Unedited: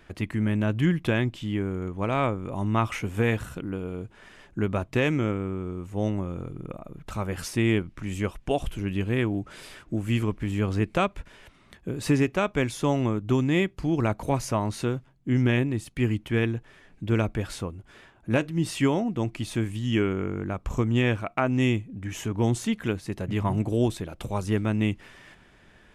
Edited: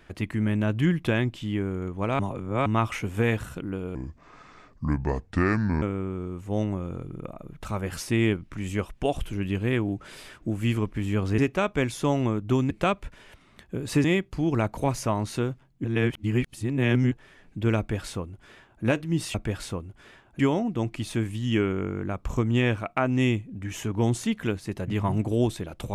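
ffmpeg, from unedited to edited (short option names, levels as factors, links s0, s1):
-filter_complex "[0:a]asplit=12[s0][s1][s2][s3][s4][s5][s6][s7][s8][s9][s10][s11];[s0]atrim=end=2.192[s12];[s1]atrim=start=2.188:end=2.662,asetpts=PTS-STARTPTS,areverse[s13];[s2]atrim=start=2.658:end=3.954[s14];[s3]atrim=start=3.95:end=5.28,asetpts=PTS-STARTPTS,asetrate=31311,aresample=44100[s15];[s4]atrim=start=5.276:end=10.842[s16];[s5]atrim=start=12.178:end=13.502[s17];[s6]atrim=start=10.838:end=12.182[s18];[s7]atrim=start=13.498:end=15.302[s19];[s8]atrim=start=15.298:end=16.572,asetpts=PTS-STARTPTS,areverse[s20];[s9]atrim=start=16.568:end=18.802[s21];[s10]atrim=start=17.238:end=18.292[s22];[s11]atrim=start=18.798[s23];[s12][s13]acrossfade=d=0.004:c1=hsin:c2=hsin[s24];[s24][s14]acrossfade=d=0.004:c1=hsin:c2=hsin[s25];[s25][s15]acrossfade=d=0.004:c1=hsin:c2=hsin[s26];[s26][s16]acrossfade=d=0.004:c1=hsin:c2=hsin[s27];[s27][s17]acrossfade=d=0.004:c1=hsin:c2=hsin[s28];[s28][s18]acrossfade=d=0.004:c1=hsin:c2=hsin[s29];[s29][s19]acrossfade=d=0.004:c1=hsin:c2=hsin[s30];[s30][s20]acrossfade=d=0.004:c1=hsin:c2=hsin[s31];[s31][s21]acrossfade=d=0.004:c1=hsin:c2=hsin[s32];[s32][s22]acrossfade=d=0.004:c1=hsin:c2=hsin[s33];[s33][s23]acrossfade=d=0.004:c1=hsin:c2=hsin"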